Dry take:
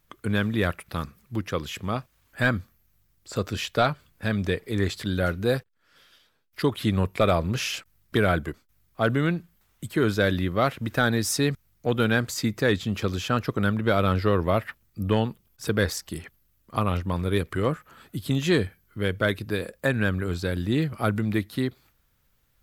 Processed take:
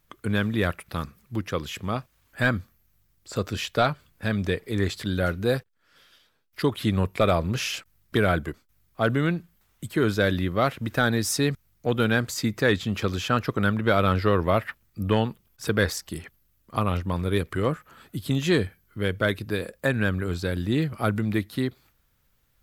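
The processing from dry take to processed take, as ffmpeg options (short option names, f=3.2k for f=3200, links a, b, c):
-filter_complex "[0:a]asettb=1/sr,asplit=3[a][b][c];[a]atrim=end=12.534[d];[b]atrim=start=12.53:end=15.92,asetpts=PTS-STARTPTS,afade=t=in:d=0.004:c=qsin,afade=t=out:st=3.386:d=0.004:c=qsin,equalizer=f=1.6k:w=0.53:g=2.5[e];[c]atrim=start=15.916[f];[d][e]acrossfade=d=0.004:c1=hsin:c2=qsin[g];[g][f]acrossfade=d=0.004:c1=qsin:c2=hsin"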